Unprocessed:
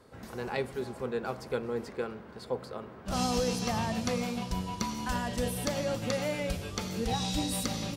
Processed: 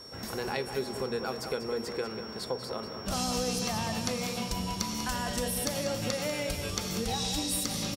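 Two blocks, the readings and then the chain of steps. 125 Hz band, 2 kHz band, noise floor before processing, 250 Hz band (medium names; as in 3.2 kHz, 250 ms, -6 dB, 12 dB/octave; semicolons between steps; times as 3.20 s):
-1.5 dB, +1.5 dB, -48 dBFS, -1.0 dB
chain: treble shelf 4.4 kHz +8.5 dB; hum notches 60/120/180/240 Hz; compression 3:1, threshold -36 dBFS, peak gain reduction 9.5 dB; whistle 5.5 kHz -51 dBFS; echo from a far wall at 33 m, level -8 dB; trim +5 dB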